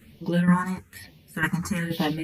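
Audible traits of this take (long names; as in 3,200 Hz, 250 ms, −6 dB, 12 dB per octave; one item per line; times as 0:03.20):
phaser sweep stages 4, 1.1 Hz, lowest notch 520–1,400 Hz
tremolo saw down 2.1 Hz, depth 70%
a shimmering, thickened sound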